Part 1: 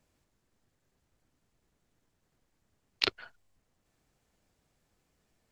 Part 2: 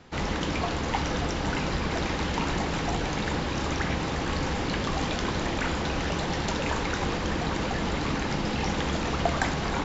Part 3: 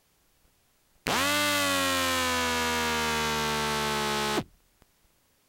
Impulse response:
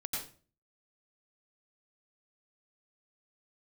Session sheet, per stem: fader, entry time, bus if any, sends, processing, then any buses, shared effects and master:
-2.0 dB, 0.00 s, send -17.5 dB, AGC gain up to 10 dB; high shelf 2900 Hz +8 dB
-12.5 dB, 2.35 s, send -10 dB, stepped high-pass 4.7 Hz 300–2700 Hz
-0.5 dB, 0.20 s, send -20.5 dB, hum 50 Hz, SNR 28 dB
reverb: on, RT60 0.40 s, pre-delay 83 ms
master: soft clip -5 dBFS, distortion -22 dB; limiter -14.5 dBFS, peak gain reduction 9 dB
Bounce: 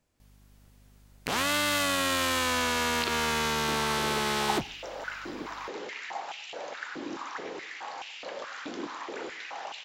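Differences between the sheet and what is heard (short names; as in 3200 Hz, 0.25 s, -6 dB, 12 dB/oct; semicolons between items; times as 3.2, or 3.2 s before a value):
stem 1: missing high shelf 2900 Hz +8 dB; stem 2: entry 2.35 s -> 3.55 s; reverb return -7.0 dB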